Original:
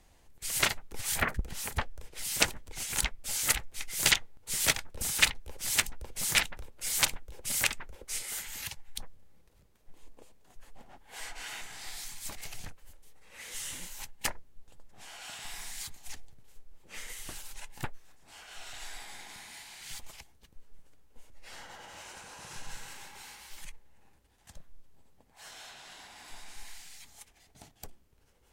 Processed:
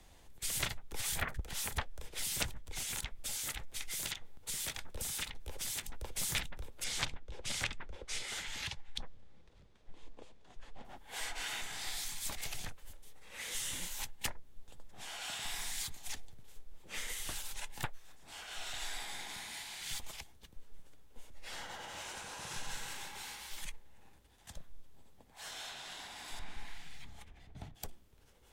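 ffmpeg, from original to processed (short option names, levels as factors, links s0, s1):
-filter_complex "[0:a]asettb=1/sr,asplit=3[s0][s1][s2];[s0]atrim=end=2.694[s3];[s1]atrim=start=2.69:end=6.01,asetpts=PTS-STARTPTS,afade=t=in:d=0.004:c=qsin,afade=t=out:st=3.316:d=0.004:c=qsin,acompressor=threshold=0.0158:ratio=6:attack=3.2:release=140:knee=1:detection=peak[s4];[s2]atrim=start=6.006[s5];[s3][s4]acrossfade=d=0.004:c1=hsin:c2=qsin[s6];[s6][s5]acrossfade=d=0.004:c1=qsin:c2=hsin,asettb=1/sr,asplit=3[s7][s8][s9];[s7]atrim=end=6.844[s10];[s8]atrim=start=6.84:end=10.85,asetpts=PTS-STARTPTS,afade=t=in:d=0.004:c=qsin,afade=t=out:st=4.006:d=0.004:c=qsin,lowpass=5200[s11];[s9]atrim=start=10.846[s12];[s10][s11]acrossfade=d=0.004:c1=hsin:c2=qsin[s13];[s13][s12]acrossfade=d=0.004:c1=qsin:c2=hsin,asettb=1/sr,asplit=3[s14][s15][s16];[s14]atrim=end=26.394[s17];[s15]atrim=start=26.39:end=27.75,asetpts=PTS-STARTPTS,afade=t=in:d=0.004:c=qsin,afade=t=out:st=1.356:d=0.004:c=qsin,bass=f=250:g=10,treble=f=4000:g=-15[s18];[s16]atrim=start=27.746[s19];[s17][s18]acrossfade=d=0.004:c1=hsin:c2=qsin[s20];[s20][s19]acrossfade=d=0.004:c1=qsin:c2=hsin,equalizer=f=3500:w=6.3:g=5,acrossover=split=150|470[s21][s22][s23];[s21]acompressor=threshold=0.0112:ratio=4[s24];[s22]acompressor=threshold=0.00158:ratio=4[s25];[s23]acompressor=threshold=0.0126:ratio=4[s26];[s24][s25][s26]amix=inputs=3:normalize=0,volume=1.26"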